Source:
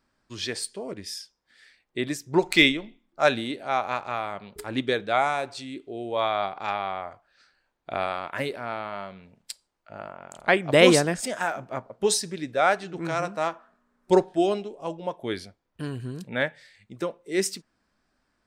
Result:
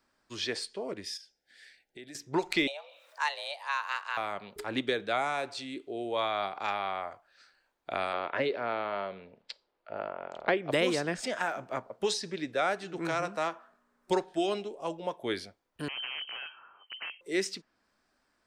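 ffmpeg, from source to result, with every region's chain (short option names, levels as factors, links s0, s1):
-filter_complex "[0:a]asettb=1/sr,asplit=3[s0][s1][s2];[s0]atrim=end=1.174[s3];[s1]atrim=start=1.17:end=2.15,asetpts=PTS-STARTPTS,afade=t=in:d=0.004:c=qsin,afade=t=out:st=0.976:d=0.004:c=qsin,acompressor=threshold=0.00447:ratio=3:attack=3.2:release=140:knee=1:detection=peak,asuperstop=centerf=1100:order=8:qfactor=2[s4];[s2]atrim=start=2.146[s5];[s3][s4]acrossfade=d=0.004:c1=hsin:c2=qsin[s6];[s6][s5]acrossfade=d=0.004:c1=qsin:c2=hsin,asettb=1/sr,asplit=3[s7][s8][s9];[s7]atrim=end=2.674[s10];[s8]atrim=start=2.67:end=4.17,asetpts=PTS-STARTPTS,afade=t=in:d=0.004:c=qsin,afade=t=out:st=1.496:d=0.004:c=qsin,highpass=f=1000:p=1,acompressor=mode=upward:threshold=0.00891:ratio=2.5:attack=3.2:release=140:knee=2.83:detection=peak,afreqshift=290[s11];[s9]atrim=start=4.166[s12];[s10][s11]acrossfade=d=0.004:c1=hsin:c2=qsin[s13];[s13][s12]acrossfade=d=0.004:c1=qsin:c2=hsin,asettb=1/sr,asplit=3[s14][s15][s16];[s14]atrim=end=8.134[s17];[s15]atrim=start=8.13:end=10.71,asetpts=PTS-STARTPTS,afade=t=in:d=0.004:c=qsin,afade=t=out:st=2.576:d=0.004:c=qsin,lowpass=f=4400:w=0.5412,lowpass=f=4400:w=1.3066,equalizer=f=470:w=1.2:g=8[s18];[s16]atrim=start=10.706[s19];[s17][s18]acrossfade=d=0.004:c1=hsin:c2=qsin[s20];[s20][s19]acrossfade=d=0.004:c1=qsin:c2=hsin,asettb=1/sr,asplit=3[s21][s22][s23];[s21]atrim=end=15.884[s24];[s22]atrim=start=15.88:end=17.21,asetpts=PTS-STARTPTS,afade=t=in:d=0.004:c=qsin,afade=t=out:st=1.326:d=0.004:c=qsin,acompressor=threshold=0.0251:ratio=20:attack=3.2:release=140:knee=1:detection=peak,aeval=exprs='(mod(39.8*val(0)+1,2)-1)/39.8':c=same,lowpass=f=2700:t=q:w=0.5098,lowpass=f=2700:t=q:w=0.6013,lowpass=f=2700:t=q:w=0.9,lowpass=f=2700:t=q:w=2.563,afreqshift=-3200[s25];[s23]atrim=start=17.206[s26];[s24][s25]acrossfade=d=0.004:c1=hsin:c2=qsin[s27];[s27][s26]acrossfade=d=0.004:c1=qsin:c2=hsin,bass=f=250:g=-8,treble=f=4000:g=1,acrossover=split=420|1000|5600[s28][s29][s30][s31];[s28]acompressor=threshold=0.0316:ratio=4[s32];[s29]acompressor=threshold=0.0141:ratio=4[s33];[s30]acompressor=threshold=0.0282:ratio=4[s34];[s31]acompressor=threshold=0.00224:ratio=4[s35];[s32][s33][s34][s35]amix=inputs=4:normalize=0"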